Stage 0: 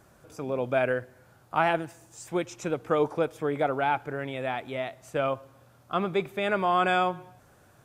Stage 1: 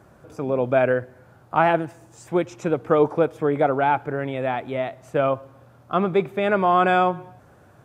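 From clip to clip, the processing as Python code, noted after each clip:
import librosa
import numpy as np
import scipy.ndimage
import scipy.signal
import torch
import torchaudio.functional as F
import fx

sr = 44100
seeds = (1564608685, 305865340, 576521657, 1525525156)

y = scipy.signal.sosfilt(scipy.signal.butter(2, 52.0, 'highpass', fs=sr, output='sos'), x)
y = fx.high_shelf(y, sr, hz=2400.0, db=-11.5)
y = F.gain(torch.from_numpy(y), 7.5).numpy()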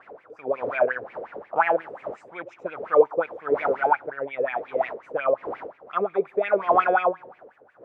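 y = fx.dmg_wind(x, sr, seeds[0], corner_hz=570.0, level_db=-33.0)
y = fx.wah_lfo(y, sr, hz=5.6, low_hz=440.0, high_hz=2400.0, q=7.0)
y = F.gain(torch.from_numpy(y), 8.5).numpy()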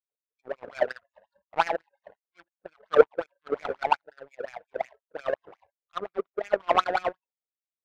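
y = fx.power_curve(x, sr, exponent=2.0)
y = fx.noise_reduce_blind(y, sr, reduce_db=29)
y = F.gain(torch.from_numpy(y), 3.5).numpy()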